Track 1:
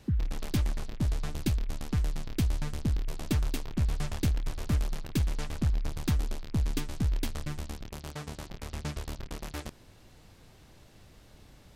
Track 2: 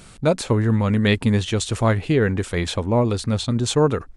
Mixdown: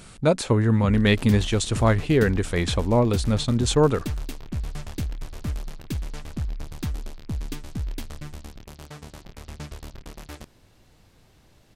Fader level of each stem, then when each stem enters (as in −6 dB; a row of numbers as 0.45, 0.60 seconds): −1.5, −1.0 decibels; 0.75, 0.00 seconds